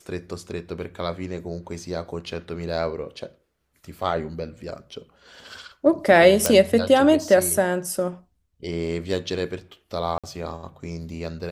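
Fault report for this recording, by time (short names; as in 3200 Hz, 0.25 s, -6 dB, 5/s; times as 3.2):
6.46 pop
10.18–10.24 gap 56 ms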